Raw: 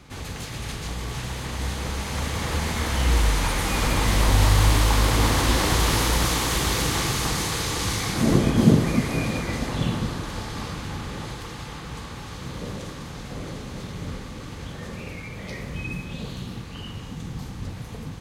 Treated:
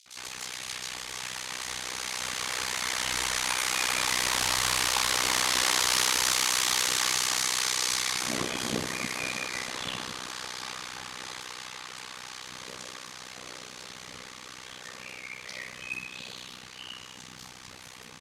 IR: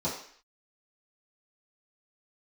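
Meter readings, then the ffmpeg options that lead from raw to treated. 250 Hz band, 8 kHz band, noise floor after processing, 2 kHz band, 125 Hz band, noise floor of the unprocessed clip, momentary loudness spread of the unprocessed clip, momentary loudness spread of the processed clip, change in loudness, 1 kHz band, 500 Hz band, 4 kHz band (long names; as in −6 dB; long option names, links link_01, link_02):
−17.0 dB, +2.0 dB, −47 dBFS, −0.5 dB, −23.5 dB, −37 dBFS, 16 LU, 19 LU, −3.5 dB, −5.0 dB, −11.0 dB, +1.0 dB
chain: -filter_complex "[0:a]bandpass=frequency=4700:width_type=q:width=0.54:csg=0,acrossover=split=3500[link_01][link_02];[link_01]adelay=60[link_03];[link_03][link_02]amix=inputs=2:normalize=0,tremolo=f=63:d=0.919,aeval=exprs='0.15*(cos(1*acos(clip(val(0)/0.15,-1,1)))-cos(1*PI/2))+0.00266*(cos(2*acos(clip(val(0)/0.15,-1,1)))-cos(2*PI/2))+0.0015*(cos(5*acos(clip(val(0)/0.15,-1,1)))-cos(5*PI/2))':channel_layout=same,volume=7.5dB"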